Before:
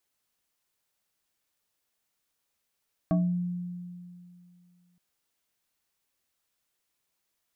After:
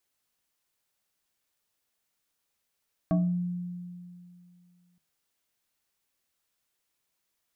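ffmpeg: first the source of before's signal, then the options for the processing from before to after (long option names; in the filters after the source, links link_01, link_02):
-f lavfi -i "aevalsrc='0.1*pow(10,-3*t/2.48)*sin(2*PI*177*t+1.1*pow(10,-3*t/0.38)*sin(2*PI*2.66*177*t))':duration=1.87:sample_rate=44100"
-af "bandreject=frequency=77.33:width_type=h:width=4,bandreject=frequency=154.66:width_type=h:width=4,bandreject=frequency=231.99:width_type=h:width=4,bandreject=frequency=309.32:width_type=h:width=4,bandreject=frequency=386.65:width_type=h:width=4,bandreject=frequency=463.98:width_type=h:width=4,bandreject=frequency=541.31:width_type=h:width=4,bandreject=frequency=618.64:width_type=h:width=4,bandreject=frequency=695.97:width_type=h:width=4,bandreject=frequency=773.3:width_type=h:width=4,bandreject=frequency=850.63:width_type=h:width=4,bandreject=frequency=927.96:width_type=h:width=4,bandreject=frequency=1005.29:width_type=h:width=4,bandreject=frequency=1082.62:width_type=h:width=4,bandreject=frequency=1159.95:width_type=h:width=4,bandreject=frequency=1237.28:width_type=h:width=4,bandreject=frequency=1314.61:width_type=h:width=4"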